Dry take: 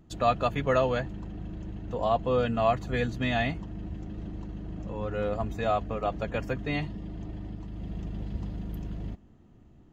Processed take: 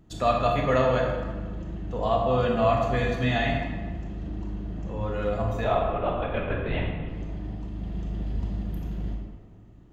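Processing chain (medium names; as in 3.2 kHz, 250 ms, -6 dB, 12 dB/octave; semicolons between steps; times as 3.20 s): 5.64–7.08 s: LPC vocoder at 8 kHz whisper; reverberation RT60 1.4 s, pre-delay 22 ms, DRR -0.5 dB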